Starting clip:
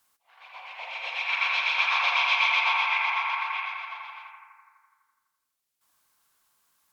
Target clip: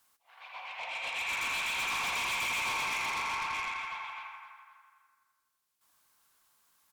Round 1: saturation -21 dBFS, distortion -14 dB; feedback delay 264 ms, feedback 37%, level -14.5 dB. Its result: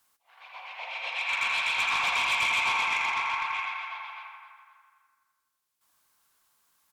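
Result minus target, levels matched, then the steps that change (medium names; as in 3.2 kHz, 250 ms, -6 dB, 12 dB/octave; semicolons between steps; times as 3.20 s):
saturation: distortion -8 dB
change: saturation -31 dBFS, distortion -6 dB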